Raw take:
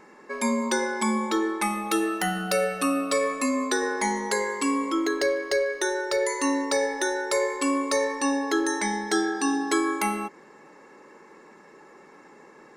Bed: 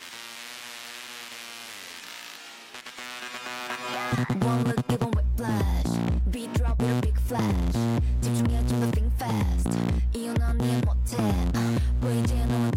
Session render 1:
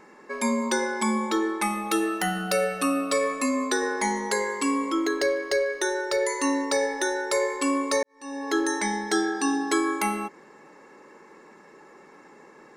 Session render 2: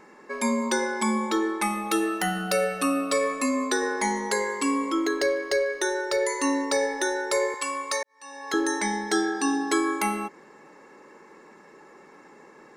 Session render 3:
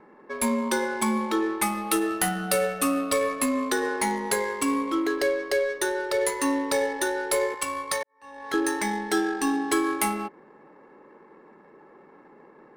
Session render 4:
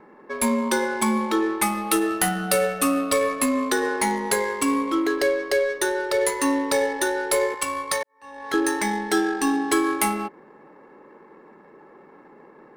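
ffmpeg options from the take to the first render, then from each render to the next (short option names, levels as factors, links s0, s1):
-filter_complex "[0:a]asplit=2[s0][s1];[s0]atrim=end=8.03,asetpts=PTS-STARTPTS,afade=t=out:st=8.026:d=0.004:c=hsin[s2];[s1]atrim=start=8.03,asetpts=PTS-STARTPTS,afade=t=in:d=0.52:c=qua[s3];[s2][s3]concat=n=2:v=0:a=1"
-filter_complex "[0:a]asettb=1/sr,asplit=3[s0][s1][s2];[s0]atrim=end=7.544[s3];[s1]atrim=start=7.54:end=8.54,asetpts=PTS-STARTPTS,afade=t=in:d=0.004:c=qsin,afade=t=out:st=0.996:d=0.004:c=qsin,highpass=770[s4];[s2]atrim=start=8.536[s5];[s3][s4]acrossfade=d=0.004:c1=hsin:c2=qsin[s6];[s6][s5]acrossfade=d=0.004:c1=qsin:c2=hsin"
-filter_complex "[0:a]acrossover=split=840|1600[s0][s1][s2];[s2]aexciter=amount=4.5:drive=9.9:freq=9400[s3];[s0][s1][s3]amix=inputs=3:normalize=0,adynamicsmooth=sensitivity=5:basefreq=1500"
-af "volume=1.41"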